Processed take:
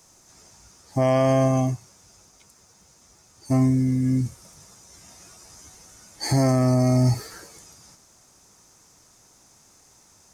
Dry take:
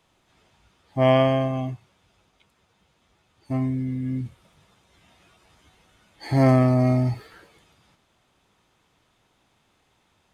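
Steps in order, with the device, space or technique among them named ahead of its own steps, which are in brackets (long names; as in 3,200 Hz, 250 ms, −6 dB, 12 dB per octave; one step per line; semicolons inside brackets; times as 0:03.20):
over-bright horn tweeter (high shelf with overshoot 4,400 Hz +10.5 dB, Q 3; brickwall limiter −16.5 dBFS, peak gain reduction 10 dB)
level +6 dB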